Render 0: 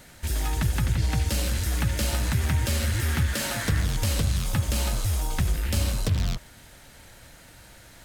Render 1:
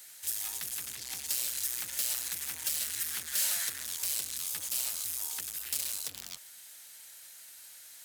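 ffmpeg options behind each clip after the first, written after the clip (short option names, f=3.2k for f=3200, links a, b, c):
-af "volume=25dB,asoftclip=hard,volume=-25dB,aderivative,volume=3.5dB"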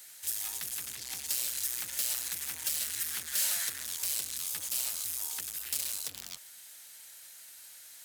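-af anull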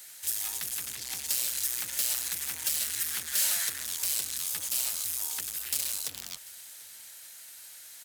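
-af "aecho=1:1:742:0.0891,volume=3dB"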